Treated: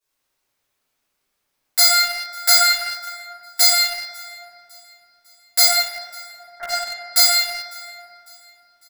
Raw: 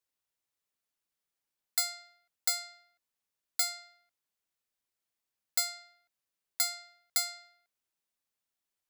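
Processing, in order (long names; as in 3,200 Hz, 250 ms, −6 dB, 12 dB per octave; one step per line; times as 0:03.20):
0:01.80–0:02.56: parametric band 1,400 Hz +8.5 dB 0.49 octaves
0:05.65–0:06.69: Butterworth low-pass 1,900 Hz 72 dB per octave
on a send: repeating echo 551 ms, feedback 46%, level −20.5 dB
on the sum: convolution reverb RT60 2.5 s, pre-delay 3 ms, DRR −18 dB
in parallel at −3 dB: centre clipping without the shift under −23 dBFS
on the sum: low-shelf EQ 320 Hz −2.5 dB
level −1 dB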